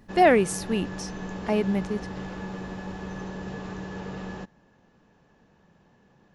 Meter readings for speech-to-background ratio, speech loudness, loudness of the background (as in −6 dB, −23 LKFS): 12.0 dB, −24.5 LKFS, −36.5 LKFS